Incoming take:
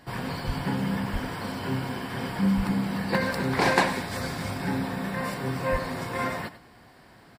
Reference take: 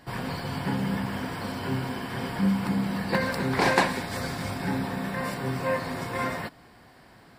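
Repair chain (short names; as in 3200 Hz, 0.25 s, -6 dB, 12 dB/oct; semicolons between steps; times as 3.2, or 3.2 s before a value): de-plosive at 0.46/1.12/2.56/5.71; inverse comb 98 ms -14.5 dB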